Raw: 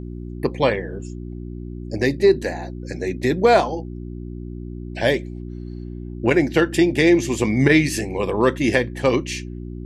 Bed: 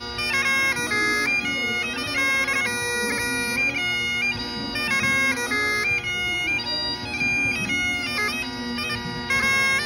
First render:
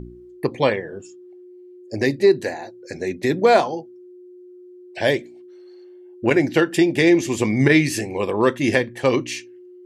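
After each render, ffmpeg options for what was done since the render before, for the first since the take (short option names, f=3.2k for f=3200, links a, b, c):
-af "bandreject=f=60:t=h:w=4,bandreject=f=120:t=h:w=4,bandreject=f=180:t=h:w=4,bandreject=f=240:t=h:w=4,bandreject=f=300:t=h:w=4"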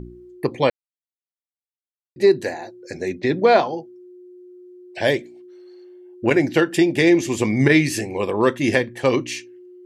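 -filter_complex "[0:a]asettb=1/sr,asplit=3[a][b][c];[a]atrim=end=3.204[d];[b]atrim=start=3.2:end=3.78,asetpts=PTS-STARTPTS,afade=t=in:d=0.004:c=qsin,afade=t=out:st=0.576:d=0.004:c=qsin,lowpass=f=5.1k:w=0.5412,lowpass=f=5.1k:w=1.3066[e];[c]atrim=start=3.776[f];[d][e]acrossfade=d=0.004:c1=hsin:c2=qsin[g];[g][f]acrossfade=d=0.004:c1=qsin:c2=hsin,asplit=3[h][i][j];[h]atrim=end=0.7,asetpts=PTS-STARTPTS,afade=t=out:st=0.696:d=0.004:c=hsin[k];[i]atrim=start=0.7:end=2.16,asetpts=PTS-STARTPTS,volume=0[l];[j]atrim=start=2.16,asetpts=PTS-STARTPTS,afade=t=in:d=0.004:c=hsin[m];[k][l][m]concat=n=3:v=0:a=1"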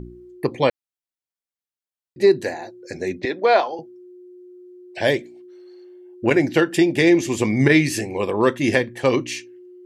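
-filter_complex "[0:a]asettb=1/sr,asplit=3[a][b][c];[a]atrim=end=3.254[d];[b]atrim=start=3.25:end=3.79,asetpts=PTS-STARTPTS,afade=t=in:d=0.004:c=qsin,afade=t=out:st=0.536:d=0.004:c=qsin,highpass=460,lowpass=6.2k[e];[c]atrim=start=3.786[f];[d][e]acrossfade=d=0.004:c1=hsin:c2=qsin[g];[g][f]acrossfade=d=0.004:c1=qsin:c2=hsin"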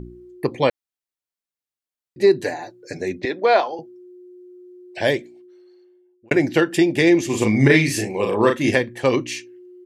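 -filter_complex "[0:a]asettb=1/sr,asplit=3[a][b][c];[a]atrim=end=2.424[d];[b]atrim=start=2.42:end=3.01,asetpts=PTS-STARTPTS,afade=t=in:d=0.004:c=qsin,afade=t=out:st=0.586:d=0.004:c=qsin,aecho=1:1:6.8:0.62,atrim=end_sample=26019[e];[c]atrim=start=3.006[f];[d][e]acrossfade=d=0.004:c1=hsin:c2=qsin[g];[g][f]acrossfade=d=0.004:c1=qsin:c2=hsin,asplit=3[h][i][j];[h]afade=t=out:st=7.29:d=0.02[k];[i]asplit=2[l][m];[m]adelay=37,volume=-4dB[n];[l][n]amix=inputs=2:normalize=0,afade=t=in:st=7.29:d=0.02,afade=t=out:st=8.7:d=0.02[o];[j]afade=t=in:st=8.7:d=0.02[p];[k][o][p]amix=inputs=3:normalize=0,asplit=2[q][r];[q]atrim=end=6.31,asetpts=PTS-STARTPTS,afade=t=out:st=5.03:d=1.28[s];[r]atrim=start=6.31,asetpts=PTS-STARTPTS,afade=t=in:d=0.004:c=hsin[t];[s][t]concat=n=2:v=0:a=1"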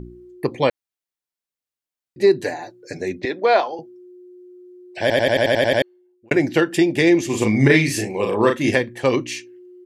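-filter_complex "[0:a]asplit=10[a][b][c][d][e][f][g][h][i][j];[a]atrim=end=5.102[k];[b]atrim=start=5.008:end=5.102[l];[c]atrim=start=5.008:end=5.102[m];[d]atrim=start=5.008:end=5.102[n];[e]atrim=start=5.008:end=5.102[o];[f]atrim=start=5.008:end=5.102[p];[g]atrim=start=5.008:end=5.102[q];[h]atrim=start=5.008:end=5.102[r];[i]atrim=start=5.008:end=5.102[s];[j]atrim=start=5.818[t];[k][l]acrossfade=d=0.004:c1=hsin:c2=hsin[u];[u][m]acrossfade=d=0.004:c1=hsin:c2=hsin[v];[v][n]acrossfade=d=0.004:c1=hsin:c2=hsin[w];[w][o]acrossfade=d=0.004:c1=hsin:c2=hsin[x];[x][p]acrossfade=d=0.004:c1=hsin:c2=hsin[y];[y][q]acrossfade=d=0.004:c1=hsin:c2=hsin[z];[z][r]acrossfade=d=0.004:c1=hsin:c2=hsin[aa];[aa][s]acrossfade=d=0.004:c1=hsin:c2=hsin[ab];[ab][t]acrossfade=d=0.004:c1=hsin:c2=hsin"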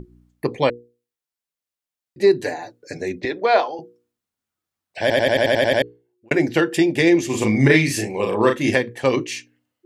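-af "bandreject=f=60:t=h:w=6,bandreject=f=120:t=h:w=6,bandreject=f=180:t=h:w=6,bandreject=f=240:t=h:w=6,bandreject=f=300:t=h:w=6,bandreject=f=360:t=h:w=6,bandreject=f=420:t=h:w=6,bandreject=f=480:t=h:w=6"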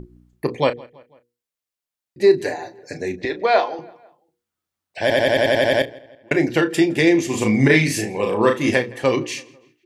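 -filter_complex "[0:a]asplit=2[a][b];[b]adelay=33,volume=-11dB[c];[a][c]amix=inputs=2:normalize=0,asplit=2[d][e];[e]adelay=165,lowpass=f=3.9k:p=1,volume=-23dB,asplit=2[f][g];[g]adelay=165,lowpass=f=3.9k:p=1,volume=0.52,asplit=2[h][i];[i]adelay=165,lowpass=f=3.9k:p=1,volume=0.52[j];[d][f][h][j]amix=inputs=4:normalize=0"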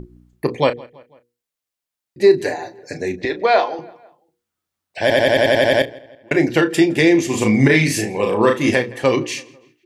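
-af "volume=2.5dB,alimiter=limit=-3dB:level=0:latency=1"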